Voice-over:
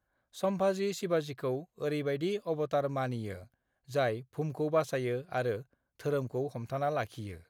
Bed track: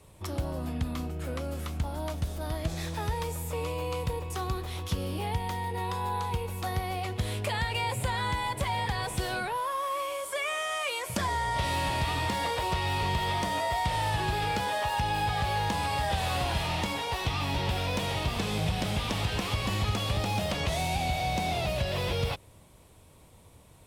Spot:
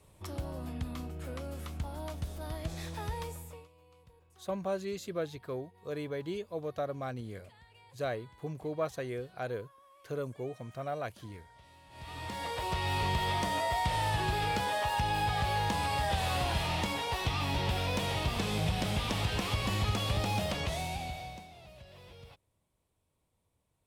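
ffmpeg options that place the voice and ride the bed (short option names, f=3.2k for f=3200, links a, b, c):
-filter_complex "[0:a]adelay=4050,volume=-5dB[a];[1:a]volume=21dB,afade=t=out:st=3.22:d=0.46:silence=0.0707946,afade=t=in:st=11.89:d=1.08:silence=0.0446684,afade=t=out:st=20.35:d=1.13:silence=0.0891251[b];[a][b]amix=inputs=2:normalize=0"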